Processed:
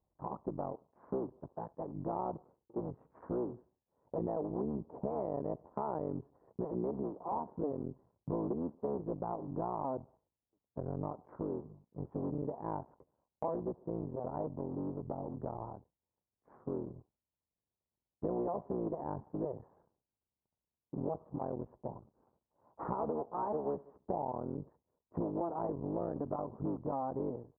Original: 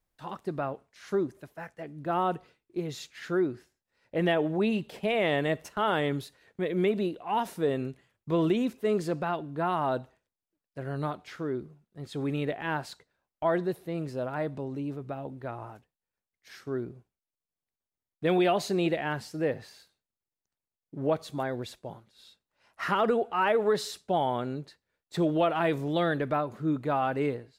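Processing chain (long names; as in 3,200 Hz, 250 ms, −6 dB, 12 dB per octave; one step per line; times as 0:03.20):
sub-harmonics by changed cycles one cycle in 3, muted
elliptic low-pass filter 1,000 Hz, stop band 80 dB
downward compressor 3 to 1, threshold −41 dBFS, peak gain reduction 14 dB
high-pass filter 50 Hz
level +4 dB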